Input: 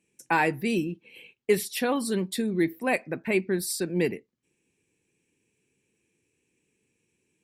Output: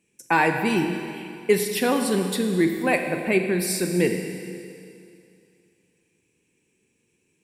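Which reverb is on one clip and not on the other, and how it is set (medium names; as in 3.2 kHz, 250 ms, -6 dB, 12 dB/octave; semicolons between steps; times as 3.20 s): Schroeder reverb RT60 2.5 s, combs from 33 ms, DRR 5 dB; trim +3.5 dB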